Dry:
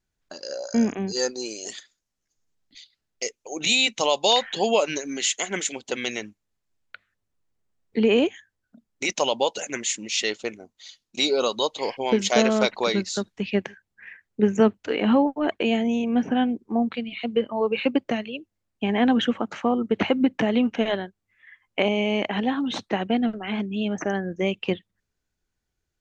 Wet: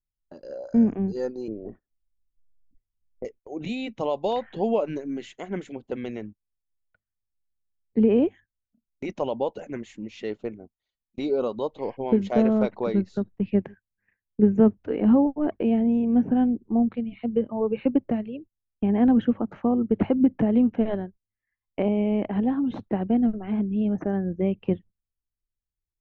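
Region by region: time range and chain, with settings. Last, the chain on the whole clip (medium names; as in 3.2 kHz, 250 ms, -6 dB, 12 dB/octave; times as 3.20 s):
1.48–3.25 s: low-pass 1.5 kHz 24 dB/octave + tilt EQ -3 dB/octave
whole clip: low-pass 1.5 kHz 6 dB/octave; gate -43 dBFS, range -20 dB; tilt EQ -4 dB/octave; trim -6 dB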